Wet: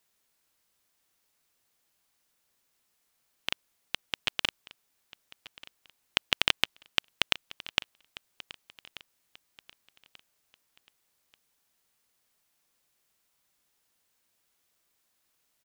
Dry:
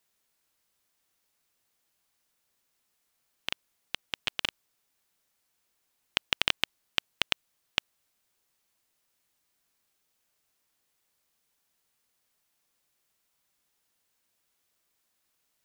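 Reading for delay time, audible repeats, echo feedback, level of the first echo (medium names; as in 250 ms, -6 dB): 1186 ms, 2, 34%, -19.0 dB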